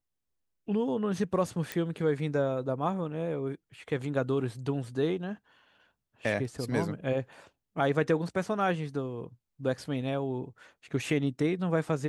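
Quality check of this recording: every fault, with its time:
1.72 pop -17 dBFS

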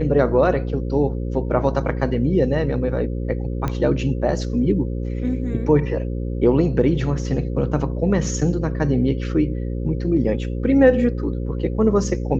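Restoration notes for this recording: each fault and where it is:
buzz 60 Hz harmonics 9 -25 dBFS
3.68 pop -12 dBFS

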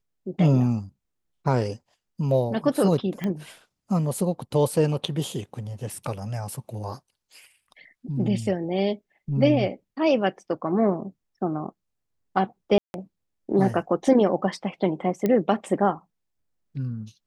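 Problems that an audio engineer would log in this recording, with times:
3.24 pop -17 dBFS
12.78–12.94 gap 0.161 s
15.26 pop -12 dBFS

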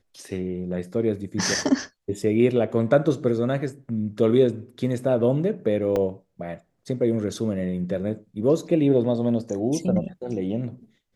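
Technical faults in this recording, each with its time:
5.96 gap 2.7 ms

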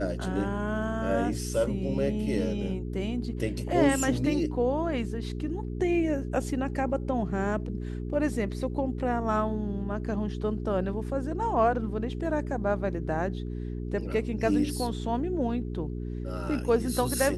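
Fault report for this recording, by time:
hum 60 Hz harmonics 7 -34 dBFS

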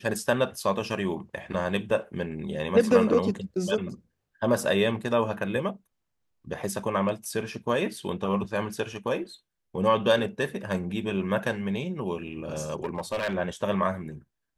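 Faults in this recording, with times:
12.84–13.35 clipped -24 dBFS

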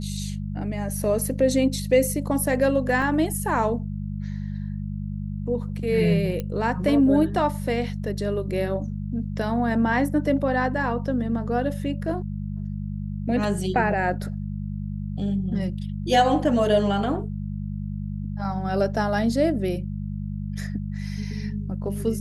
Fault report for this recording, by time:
hum 50 Hz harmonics 4 -30 dBFS
3.02 gap 2.8 ms
6.4 pop -16 dBFS

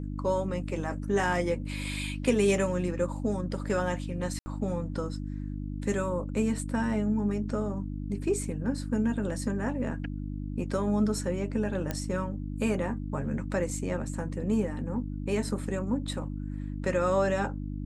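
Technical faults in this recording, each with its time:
hum 50 Hz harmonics 6 -35 dBFS
4.39–4.46 gap 70 ms
11.91 pop -16 dBFS

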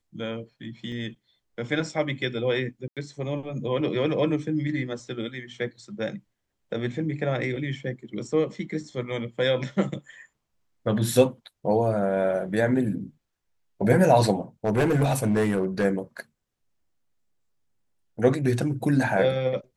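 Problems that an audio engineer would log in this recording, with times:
0.92 gap 2.2 ms
2.88–2.97 gap 87 ms
14.64–15.85 clipped -17.5 dBFS

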